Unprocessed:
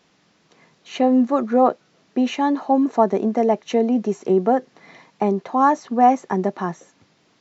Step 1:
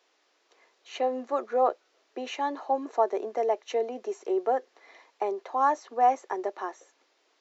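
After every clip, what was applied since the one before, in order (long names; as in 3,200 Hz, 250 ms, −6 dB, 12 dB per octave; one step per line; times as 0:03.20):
inverse Chebyshev high-pass filter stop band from 180 Hz, stop band 40 dB
level −7 dB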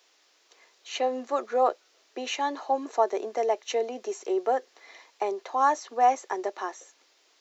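high-shelf EQ 2,700 Hz +11 dB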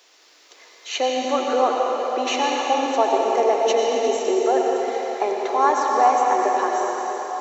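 in parallel at +2 dB: downward compressor, threshold −34 dBFS, peak gain reduction 16.5 dB
on the sum: convolution reverb RT60 4.7 s, pre-delay 79 ms, DRR −2 dB
level +1.5 dB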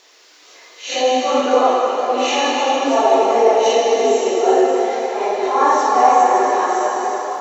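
random phases in long frames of 200 ms
level +5 dB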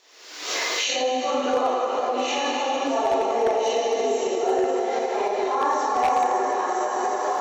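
camcorder AGC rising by 51 dB per second
wave folding −5 dBFS
level −8.5 dB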